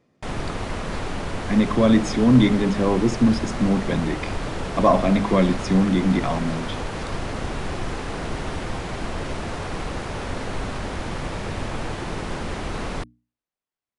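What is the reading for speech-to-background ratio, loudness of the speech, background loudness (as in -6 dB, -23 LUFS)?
9.5 dB, -20.5 LUFS, -30.0 LUFS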